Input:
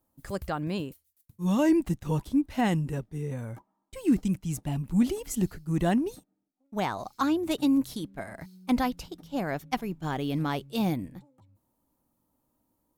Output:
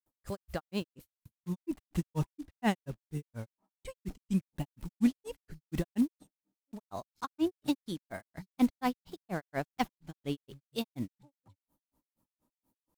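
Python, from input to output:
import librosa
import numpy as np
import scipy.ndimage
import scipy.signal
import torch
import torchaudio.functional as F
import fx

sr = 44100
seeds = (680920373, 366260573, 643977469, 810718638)

y = fx.block_float(x, sr, bits=5)
y = fx.granulator(y, sr, seeds[0], grain_ms=133.0, per_s=4.2, spray_ms=100.0, spread_st=0)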